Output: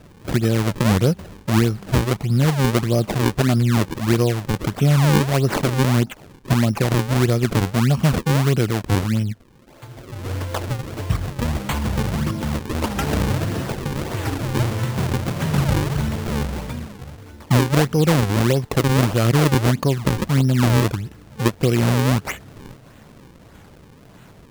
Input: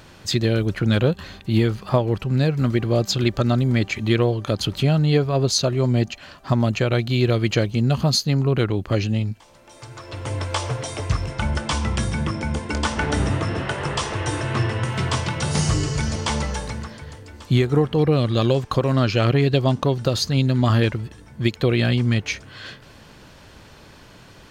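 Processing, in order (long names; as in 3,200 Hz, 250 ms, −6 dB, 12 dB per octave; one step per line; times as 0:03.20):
parametric band 180 Hz +5 dB 1.6 octaves
sample-and-hold swept by an LFO 38×, swing 160% 1.6 Hz
wow of a warped record 45 rpm, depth 160 cents
level −1.5 dB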